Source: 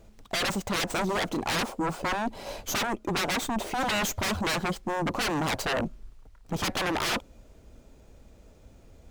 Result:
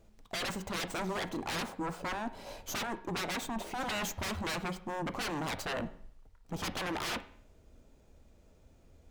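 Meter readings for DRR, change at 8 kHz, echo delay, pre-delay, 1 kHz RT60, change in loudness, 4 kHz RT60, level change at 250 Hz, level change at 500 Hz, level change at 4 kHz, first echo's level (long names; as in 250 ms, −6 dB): 11.0 dB, −8.0 dB, no echo audible, 11 ms, 0.55 s, −7.5 dB, 0.55 s, −7.5 dB, −7.5 dB, −8.0 dB, no echo audible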